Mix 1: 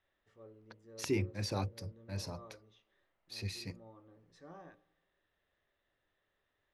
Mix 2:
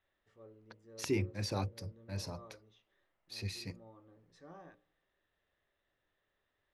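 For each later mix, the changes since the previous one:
first voice: send -6.0 dB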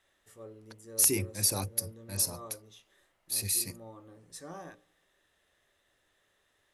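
first voice +8.0 dB; master: remove distance through air 220 m

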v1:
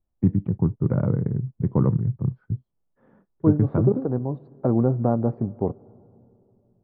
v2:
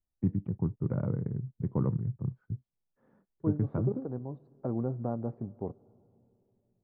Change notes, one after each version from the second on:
first voice -9.0 dB; second voice -12.0 dB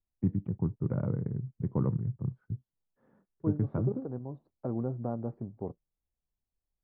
reverb: off

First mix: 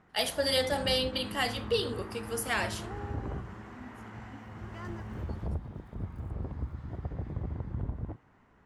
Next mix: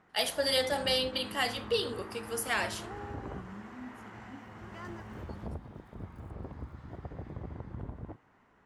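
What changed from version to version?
second voice: add tone controls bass +14 dB, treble 0 dB; master: add bass shelf 180 Hz -9 dB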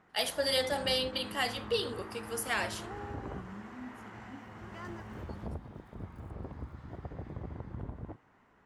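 first voice: send -7.5 dB

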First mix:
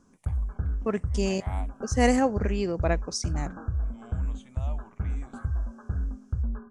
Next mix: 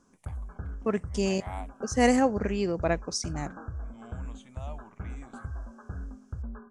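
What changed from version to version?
background: add bass shelf 190 Hz -10 dB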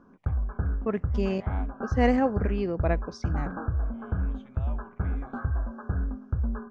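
background +9.5 dB; master: add distance through air 280 m

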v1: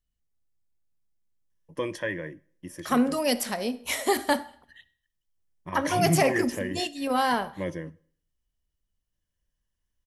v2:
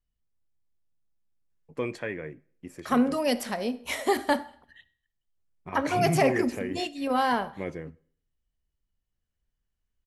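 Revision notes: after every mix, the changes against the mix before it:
first voice: remove rippled EQ curve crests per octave 1.2, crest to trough 11 dB; master: add treble shelf 4.6 kHz -8.5 dB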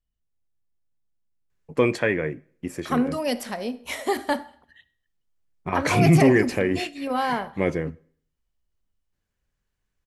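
first voice +11.0 dB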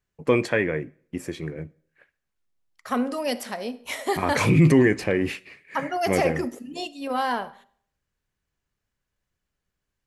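first voice: entry -1.50 s; second voice: add bass shelf 170 Hz -9 dB

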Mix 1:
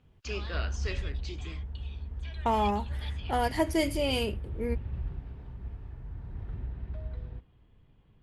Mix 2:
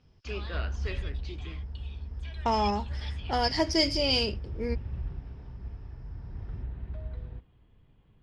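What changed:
first voice: add distance through air 140 m; second voice: add resonant low-pass 5.2 kHz, resonance Q 14

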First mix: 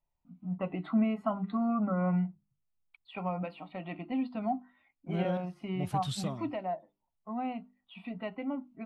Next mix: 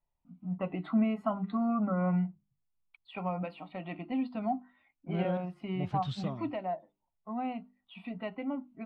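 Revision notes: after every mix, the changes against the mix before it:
second voice: add distance through air 180 m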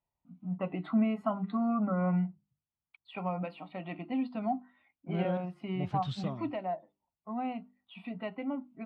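master: add high-pass 60 Hz

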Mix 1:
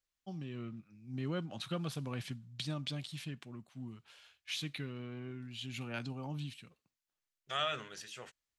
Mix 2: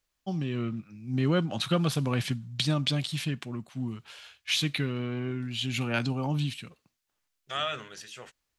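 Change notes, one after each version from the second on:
first voice +12.0 dB; second voice +3.5 dB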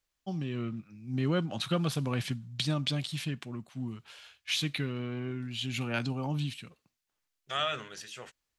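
first voice -3.5 dB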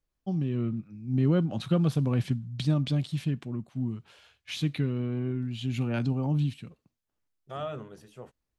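second voice: add high-order bell 3.4 kHz -10.5 dB 2.7 oct; master: add tilt shelf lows +7 dB, about 720 Hz

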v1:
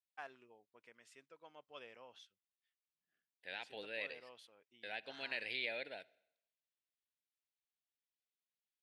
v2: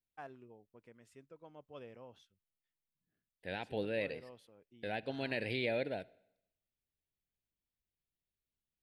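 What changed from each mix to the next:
first voice -6.5 dB; master: remove band-pass filter 3.5 kHz, Q 0.54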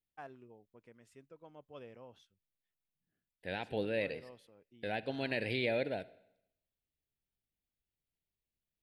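second voice: send +6.0 dB

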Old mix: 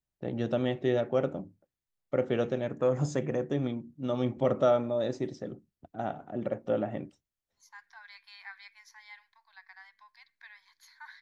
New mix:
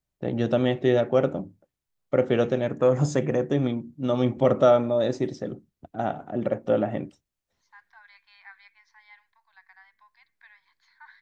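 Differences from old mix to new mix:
first voice +6.5 dB; second voice: add distance through air 220 m

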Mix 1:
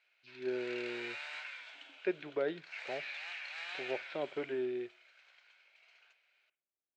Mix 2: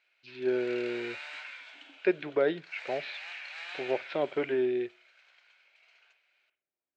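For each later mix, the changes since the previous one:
speech +8.0 dB; background: send +7.0 dB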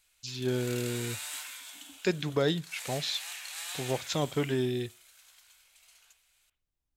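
speech: remove distance through air 240 m; master: remove cabinet simulation 360–3800 Hz, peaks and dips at 370 Hz +7 dB, 600 Hz +6 dB, 1.1 kHz -4 dB, 1.5 kHz +4 dB, 2.3 kHz +6 dB, 3.5 kHz -6 dB

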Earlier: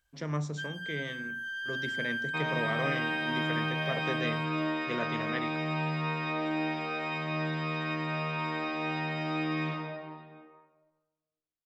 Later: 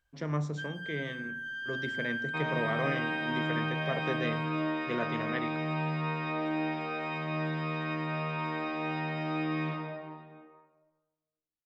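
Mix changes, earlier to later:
speech: send +11.5 dB; master: add treble shelf 3.5 kHz -8.5 dB

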